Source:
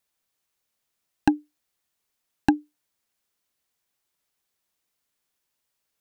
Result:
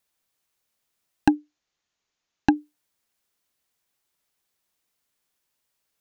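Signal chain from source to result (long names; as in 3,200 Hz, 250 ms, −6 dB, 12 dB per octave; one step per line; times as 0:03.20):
0:01.35–0:02.56: elliptic low-pass filter 6,800 Hz
level +1.5 dB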